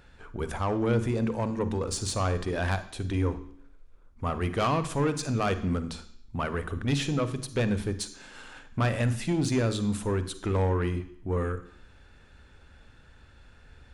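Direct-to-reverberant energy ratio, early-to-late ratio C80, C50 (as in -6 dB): 11.5 dB, 16.5 dB, 13.0 dB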